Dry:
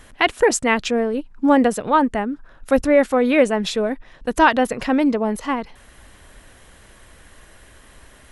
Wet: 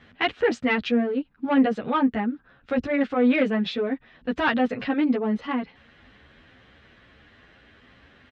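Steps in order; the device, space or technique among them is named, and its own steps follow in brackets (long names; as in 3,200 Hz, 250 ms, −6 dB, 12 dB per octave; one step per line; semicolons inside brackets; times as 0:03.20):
barber-pole flanger into a guitar amplifier (barber-pole flanger 10.3 ms +2.2 Hz; soft clipping −11.5 dBFS, distortion −17 dB; loudspeaker in its box 84–3,900 Hz, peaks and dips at 240 Hz +4 dB, 360 Hz −3 dB, 610 Hz −5 dB, 970 Hz −7 dB)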